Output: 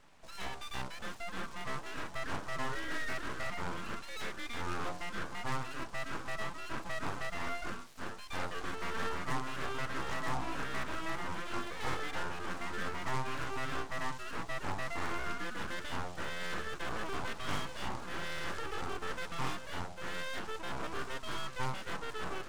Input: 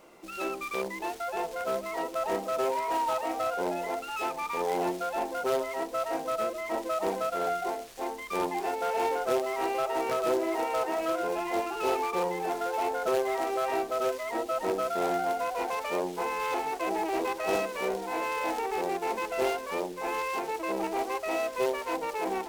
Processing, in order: LPF 8600 Hz 24 dB/oct; full-wave rectifier; gain -5 dB

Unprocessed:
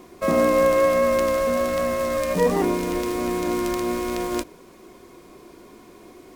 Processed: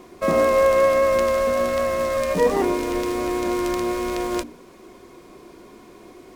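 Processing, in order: high shelf 9600 Hz -6 dB; notches 60/120/180/240/300 Hz; gain +1.5 dB

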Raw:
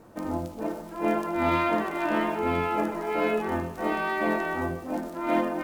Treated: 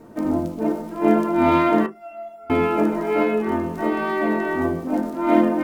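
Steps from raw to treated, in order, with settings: 1.86–2.5 resonator 680 Hz, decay 0.5 s, mix 100%; on a send at -2 dB: reverb RT60 0.15 s, pre-delay 3 ms; 3.22–4.61 on the sum: compressor 2.5:1, threshold -21 dBFS, peak gain reduction 4.5 dB; gain +2 dB

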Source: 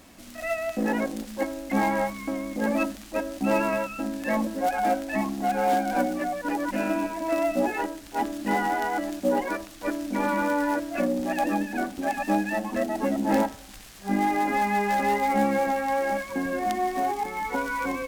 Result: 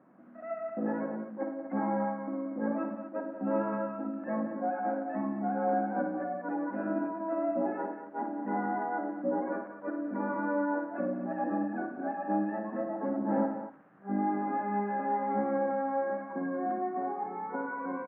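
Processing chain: elliptic band-pass 150–1500 Hz, stop band 60 dB; air absorption 310 m; on a send: tapped delay 55/103/181/235 ms -7.5/-10.5/-11.5/-11 dB; on the sum: gain -6.5 dB

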